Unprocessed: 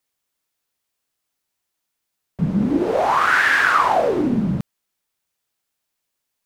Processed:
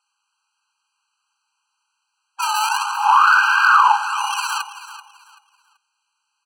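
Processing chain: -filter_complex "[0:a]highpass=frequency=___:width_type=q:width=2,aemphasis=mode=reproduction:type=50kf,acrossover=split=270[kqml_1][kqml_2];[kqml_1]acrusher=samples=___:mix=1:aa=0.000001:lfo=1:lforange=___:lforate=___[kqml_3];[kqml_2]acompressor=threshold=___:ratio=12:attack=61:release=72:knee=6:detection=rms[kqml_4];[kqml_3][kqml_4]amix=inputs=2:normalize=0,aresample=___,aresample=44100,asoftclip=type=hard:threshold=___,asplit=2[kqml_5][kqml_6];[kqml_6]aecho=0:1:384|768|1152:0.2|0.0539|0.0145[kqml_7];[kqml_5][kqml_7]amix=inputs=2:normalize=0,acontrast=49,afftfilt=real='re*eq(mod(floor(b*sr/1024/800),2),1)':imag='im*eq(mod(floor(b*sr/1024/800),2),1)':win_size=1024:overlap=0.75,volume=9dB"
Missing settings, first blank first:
170, 28, 28, 0.88, -26dB, 22050, -21dB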